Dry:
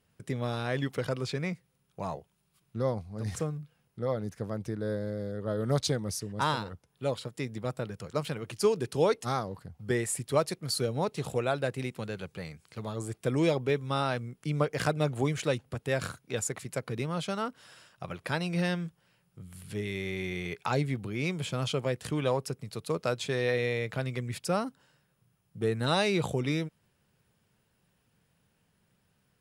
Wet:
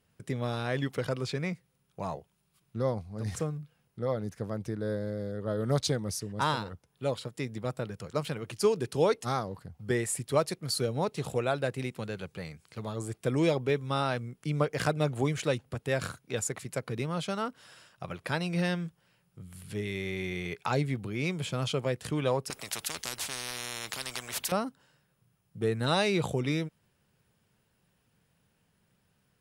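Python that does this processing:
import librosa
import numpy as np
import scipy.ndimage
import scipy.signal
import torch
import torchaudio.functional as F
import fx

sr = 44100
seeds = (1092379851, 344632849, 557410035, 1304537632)

y = fx.spectral_comp(x, sr, ratio=10.0, at=(22.5, 24.52))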